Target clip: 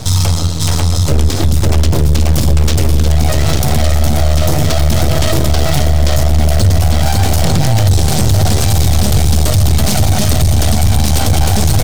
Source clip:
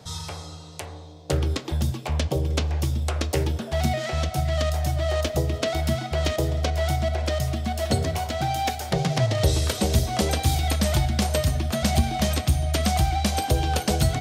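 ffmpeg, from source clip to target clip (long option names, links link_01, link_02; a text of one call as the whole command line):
ffmpeg -i in.wav -filter_complex "[0:a]highpass=40,aecho=1:1:789:0.211,asplit=2[link_01][link_02];[link_02]acrusher=samples=19:mix=1:aa=0.000001:lfo=1:lforange=30.4:lforate=3.3,volume=-12dB[link_03];[link_01][link_03]amix=inputs=2:normalize=0,aecho=1:1:650|1072|1347|1526|1642:0.631|0.398|0.251|0.158|0.1,acompressor=threshold=-20dB:ratio=2,bandreject=frequency=129.5:width_type=h:width=4,bandreject=frequency=259:width_type=h:width=4,bandreject=frequency=388.5:width_type=h:width=4,bandreject=frequency=518:width_type=h:width=4,bandreject=frequency=647.5:width_type=h:width=4,bandreject=frequency=777:width_type=h:width=4,bandreject=frequency=906.5:width_type=h:width=4,bandreject=frequency=1036:width_type=h:width=4,bandreject=frequency=1165.5:width_type=h:width=4,bandreject=frequency=1295:width_type=h:width=4,bandreject=frequency=1424.5:width_type=h:width=4,atempo=1.2,aeval=exprs='max(val(0),0)':channel_layout=same,bass=frequency=250:gain=6,treble=frequency=4000:gain=8,acontrast=85,equalizer=frequency=96:width_type=o:width=0.24:gain=14,alimiter=level_in=14dB:limit=-1dB:release=50:level=0:latency=1,volume=-1dB" out.wav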